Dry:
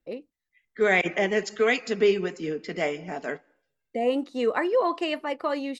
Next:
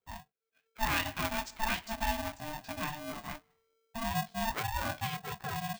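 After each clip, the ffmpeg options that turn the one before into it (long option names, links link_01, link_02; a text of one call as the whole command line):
ffmpeg -i in.wav -af "asubboost=boost=4:cutoff=230,flanger=delay=16.5:depth=8:speed=2.6,aeval=exprs='val(0)*sgn(sin(2*PI*450*n/s))':channel_layout=same,volume=-6.5dB" out.wav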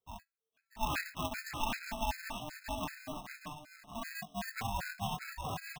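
ffmpeg -i in.wav -filter_complex "[0:a]asplit=2[link_01][link_02];[link_02]aecho=0:1:637|1274|1911:0.531|0.0956|0.0172[link_03];[link_01][link_03]amix=inputs=2:normalize=0,afftfilt=real='re*gt(sin(2*PI*2.6*pts/sr)*(1-2*mod(floor(b*sr/1024/1300),2)),0)':imag='im*gt(sin(2*PI*2.6*pts/sr)*(1-2*mod(floor(b*sr/1024/1300),2)),0)':win_size=1024:overlap=0.75,volume=-2dB" out.wav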